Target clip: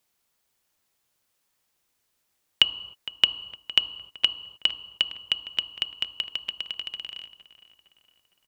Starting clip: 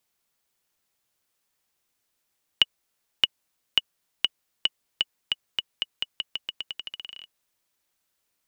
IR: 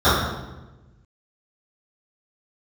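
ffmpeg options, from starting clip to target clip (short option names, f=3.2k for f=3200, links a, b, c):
-filter_complex "[0:a]asplit=2[a][b];[b]adelay=460,lowpass=f=2.8k:p=1,volume=-14.5dB,asplit=2[c][d];[d]adelay=460,lowpass=f=2.8k:p=1,volume=0.5,asplit=2[e][f];[f]adelay=460,lowpass=f=2.8k:p=1,volume=0.5,asplit=2[g][h];[h]adelay=460,lowpass=f=2.8k:p=1,volume=0.5,asplit=2[i][j];[j]adelay=460,lowpass=f=2.8k:p=1,volume=0.5[k];[a][c][e][g][i][k]amix=inputs=6:normalize=0,asplit=2[l][m];[1:a]atrim=start_sample=2205,afade=t=out:st=0.3:d=0.01,atrim=end_sample=13671,asetrate=34839,aresample=44100[n];[m][n]afir=irnorm=-1:irlink=0,volume=-38.5dB[o];[l][o]amix=inputs=2:normalize=0,volume=2dB"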